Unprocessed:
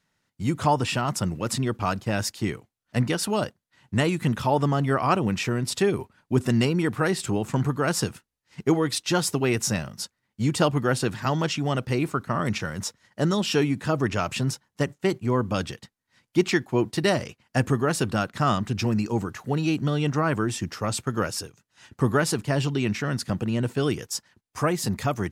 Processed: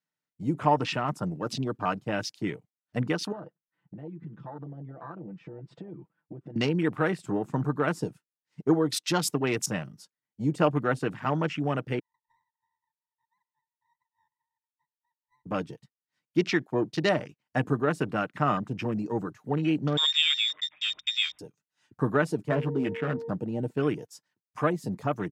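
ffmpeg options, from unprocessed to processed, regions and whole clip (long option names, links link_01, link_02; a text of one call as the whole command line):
ffmpeg -i in.wav -filter_complex "[0:a]asettb=1/sr,asplit=3[link_01][link_02][link_03];[link_01]atrim=end=3.324[link_04];[link_02]atrim=start=3.32:end=6.56,asetpts=PTS-STARTPTS,afade=type=in:duration=0.004:curve=qsin,afade=type=out:start_time=3.236:duration=0.004:curve=qsin,lowpass=1900,aecho=1:1:6:0.78,atrim=end_sample=142884,acompressor=threshold=-34dB:ratio=8:attack=3.2:release=140:knee=1:detection=peak[link_05];[link_03]atrim=start=6.556[link_06];[link_04][link_05]acrossfade=duration=0.004:curve1=hsin:curve2=qsin[link_07];[link_07][link_06]acrossfade=duration=0.004:curve1=qsin:curve2=hsin,asettb=1/sr,asplit=3[link_08][link_09][link_10];[link_08]atrim=end=11.994[link_11];[link_09]atrim=start=11.99:end=15.46,asetpts=PTS-STARTPTS,afade=type=in:duration=0.004:curve=qsin,afade=type=out:start_time=3.466:duration=0.004:curve=qsin,acompressor=threshold=-32dB:ratio=3:attack=3.2:release=140:knee=1:detection=peak,asuperpass=centerf=940:order=8:qfactor=6.9,aeval=exprs='max(val(0),0)':channel_layout=same[link_12];[link_10]atrim=start=15.456[link_13];[link_11][link_12]acrossfade=duration=0.004:curve1=hsin:curve2=qsin[link_14];[link_14][link_13]acrossfade=duration=0.004:curve1=qsin:curve2=hsin,asettb=1/sr,asplit=3[link_15][link_16][link_17];[link_15]atrim=end=19.974[link_18];[link_16]atrim=start=19.97:end=21.39,asetpts=PTS-STARTPTS,afade=type=in:duration=0.004:curve=qsin,afade=type=out:start_time=1.416:duration=0.004:curve=qsin,lowpass=frequency=3200:width_type=q:width=0.5098,lowpass=frequency=3200:width_type=q:width=0.6013,lowpass=frequency=3200:width_type=q:width=0.9,lowpass=frequency=3200:width_type=q:width=2.563,afreqshift=-3800,aeval=exprs='val(0)+0.00158*(sin(2*PI*50*n/s)+sin(2*PI*2*50*n/s)/2+sin(2*PI*3*50*n/s)/3+sin(2*PI*4*50*n/s)/4+sin(2*PI*5*50*n/s)/5)':channel_layout=same[link_19];[link_17]atrim=start=21.386[link_20];[link_18][link_19]acrossfade=duration=0.004:curve1=hsin:curve2=qsin[link_21];[link_21][link_20]acrossfade=duration=0.004:curve1=qsin:curve2=hsin,asettb=1/sr,asplit=3[link_22][link_23][link_24];[link_22]atrim=end=22.484[link_25];[link_23]atrim=start=22.48:end=23.29,asetpts=PTS-STARTPTS,afade=type=in:duration=0.004:curve=qsin,afade=type=out:start_time=0.806:duration=0.004:curve=qsin,asplit=2[link_26][link_27];[link_27]adelay=12,volume=-5dB[link_28];[link_26][link_28]amix=inputs=2:normalize=0,atrim=end_sample=35721,adynamicsmooth=sensitivity=3.5:basefreq=680,aeval=exprs='val(0)+0.02*sin(2*PI*460*n/s)':channel_layout=same[link_29];[link_24]atrim=start=23.286[link_30];[link_25][link_29]acrossfade=duration=0.004:curve1=hsin:curve2=qsin[link_31];[link_31][link_30]acrossfade=duration=0.004:curve1=qsin:curve2=hsin,aecho=1:1:6.6:0.33,afwtdn=0.02,highpass=160,volume=-2.5dB" out.wav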